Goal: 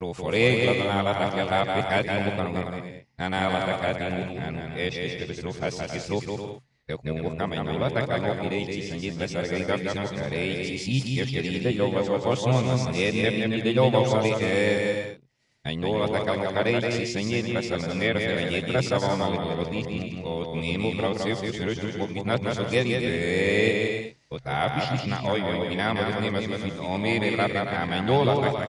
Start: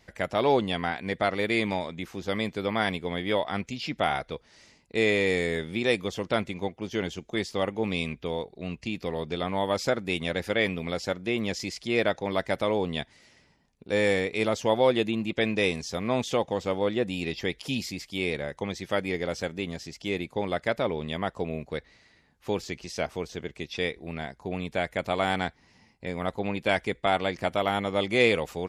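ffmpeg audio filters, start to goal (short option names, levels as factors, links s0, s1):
-filter_complex "[0:a]areverse,agate=range=0.0224:threshold=0.00447:ratio=3:detection=peak,equalizer=f=130:t=o:w=0.34:g=14,asplit=2[s0][s1];[s1]aecho=0:1:170|272|333.2|369.9|392:0.631|0.398|0.251|0.158|0.1[s2];[s0][s2]amix=inputs=2:normalize=0,aresample=22050,aresample=44100"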